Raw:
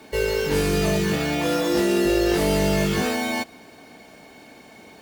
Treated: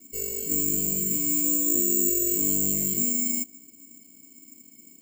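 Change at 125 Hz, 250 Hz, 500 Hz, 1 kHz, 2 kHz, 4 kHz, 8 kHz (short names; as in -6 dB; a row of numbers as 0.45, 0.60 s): -13.0 dB, -7.5 dB, -15.0 dB, under -25 dB, -21.0 dB, -16.0 dB, +11.0 dB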